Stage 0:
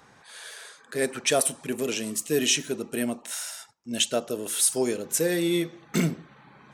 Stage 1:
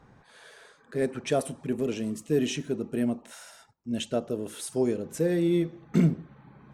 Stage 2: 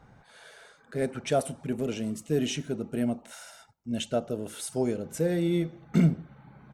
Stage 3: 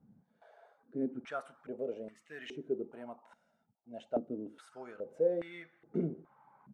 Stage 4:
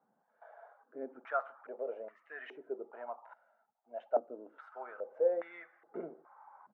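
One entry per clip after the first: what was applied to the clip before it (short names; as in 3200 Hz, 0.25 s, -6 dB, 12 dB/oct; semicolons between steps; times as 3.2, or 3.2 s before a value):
tilt -3.5 dB/oct; gain -5 dB
comb 1.4 ms, depth 31%
stepped band-pass 2.4 Hz 210–1800 Hz; gain +1 dB
Butterworth band-pass 1000 Hz, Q 0.96; gain +7 dB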